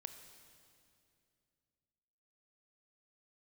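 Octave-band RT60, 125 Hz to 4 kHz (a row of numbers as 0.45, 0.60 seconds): 3.2, 3.1, 2.7, 2.3, 2.3, 2.3 seconds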